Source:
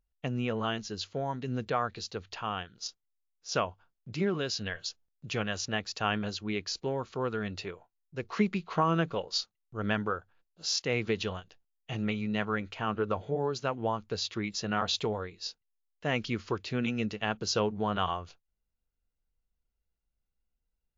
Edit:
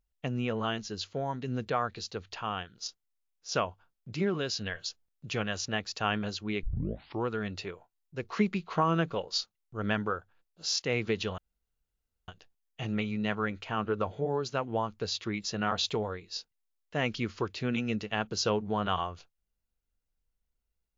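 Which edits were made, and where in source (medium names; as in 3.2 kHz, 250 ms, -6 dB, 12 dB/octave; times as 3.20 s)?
6.63 s: tape start 0.64 s
11.38 s: insert room tone 0.90 s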